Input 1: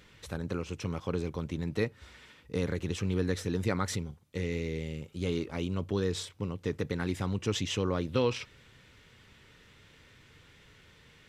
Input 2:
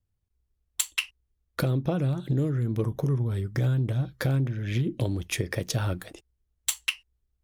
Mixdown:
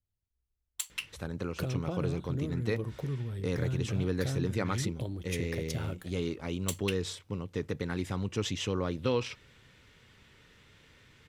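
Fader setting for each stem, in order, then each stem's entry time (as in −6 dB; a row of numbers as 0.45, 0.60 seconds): −1.5, −9.0 decibels; 0.90, 0.00 seconds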